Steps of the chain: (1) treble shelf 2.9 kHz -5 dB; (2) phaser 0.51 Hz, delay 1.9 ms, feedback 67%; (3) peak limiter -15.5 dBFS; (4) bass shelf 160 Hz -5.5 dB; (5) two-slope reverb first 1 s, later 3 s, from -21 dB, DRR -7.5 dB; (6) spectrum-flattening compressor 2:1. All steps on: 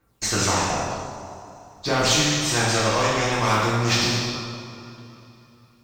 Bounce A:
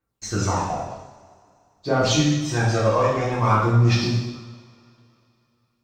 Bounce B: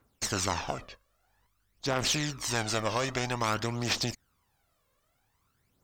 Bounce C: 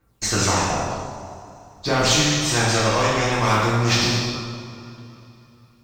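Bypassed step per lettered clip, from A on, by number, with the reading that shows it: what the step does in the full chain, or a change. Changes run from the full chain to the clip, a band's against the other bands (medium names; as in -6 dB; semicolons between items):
6, 125 Hz band +8.5 dB; 5, momentary loudness spread change -9 LU; 4, 125 Hz band +2.0 dB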